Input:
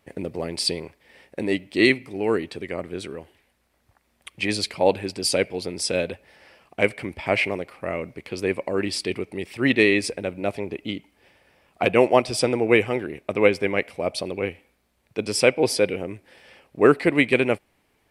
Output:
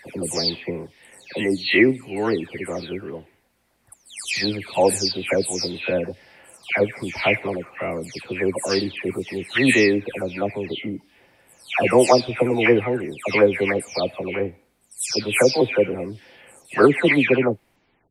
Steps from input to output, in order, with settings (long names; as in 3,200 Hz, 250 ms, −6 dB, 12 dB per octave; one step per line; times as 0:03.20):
every frequency bin delayed by itself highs early, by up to 349 ms
level +3 dB